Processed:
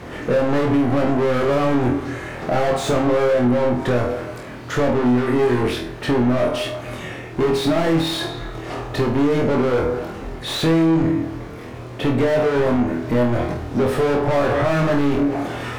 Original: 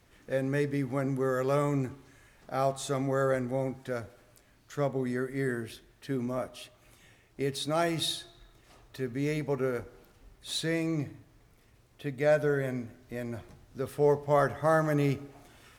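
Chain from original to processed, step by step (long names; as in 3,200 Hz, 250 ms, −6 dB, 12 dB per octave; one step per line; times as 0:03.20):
low-shelf EQ 420 Hz +11.5 dB
mid-hump overdrive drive 39 dB, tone 1,100 Hz, clips at −8 dBFS
on a send: flutter between parallel walls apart 4.2 metres, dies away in 0.35 s
on the sum: downward compressor 4 to 1, threshold −13 dBFS, peak gain reduction 6 dB
level −1.5 dB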